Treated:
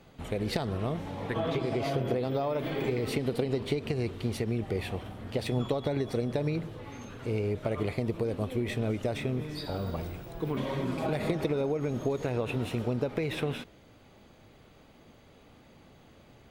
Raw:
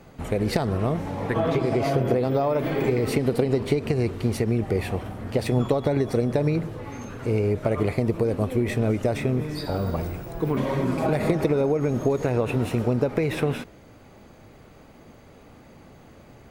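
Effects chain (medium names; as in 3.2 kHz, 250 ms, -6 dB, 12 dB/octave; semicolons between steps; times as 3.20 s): peaking EQ 3.4 kHz +7.5 dB 0.76 oct; trim -7.5 dB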